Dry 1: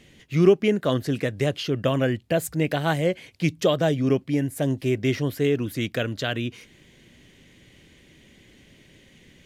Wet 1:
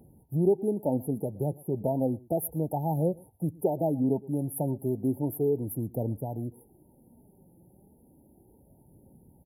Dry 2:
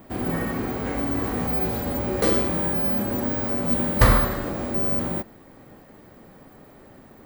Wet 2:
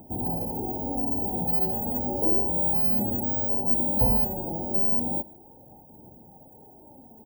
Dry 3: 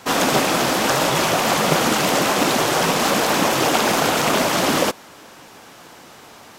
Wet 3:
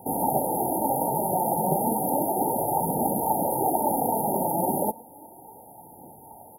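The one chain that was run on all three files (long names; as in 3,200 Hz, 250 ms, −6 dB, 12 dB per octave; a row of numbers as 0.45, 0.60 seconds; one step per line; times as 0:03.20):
high-pass filter 49 Hz
low shelf with overshoot 790 Hz −7 dB, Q 1.5
on a send: single-tap delay 116 ms −24 dB
on the sum: flanger 0.33 Hz, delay 0.1 ms, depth 5.9 ms, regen +51%
in parallel at −3 dB: downward compressor, threshold −34 dBFS
on the sum: linear-phase brick-wall band-stop 940–10,000 Hz
level +4 dB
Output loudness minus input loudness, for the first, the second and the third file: −6.0, −0.5, −7.5 LU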